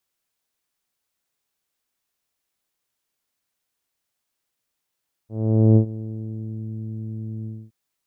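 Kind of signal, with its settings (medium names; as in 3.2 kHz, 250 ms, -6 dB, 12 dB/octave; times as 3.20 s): synth note saw A2 24 dB/octave, low-pass 300 Hz, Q 0.87, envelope 1 oct, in 1.38 s, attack 473 ms, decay 0.09 s, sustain -18.5 dB, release 0.25 s, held 2.17 s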